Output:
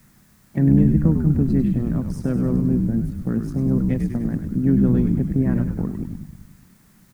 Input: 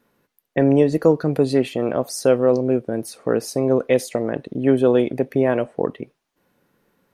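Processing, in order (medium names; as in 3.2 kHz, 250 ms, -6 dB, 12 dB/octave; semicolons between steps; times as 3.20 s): local Wiener filter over 9 samples; dynamic bell 580 Hz, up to -6 dB, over -28 dBFS, Q 1.4; on a send: frequency-shifting echo 100 ms, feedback 62%, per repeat -72 Hz, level -7.5 dB; on the sum: harmony voices +3 st -14 dB; in parallel at -3.5 dB: word length cut 6-bit, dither triangular; on the sum: FFT filter 120 Hz 0 dB, 190 Hz +5 dB, 460 Hz -18 dB, 1.8 kHz -14 dB, 2.9 kHz -24 dB, 7.2 kHz -20 dB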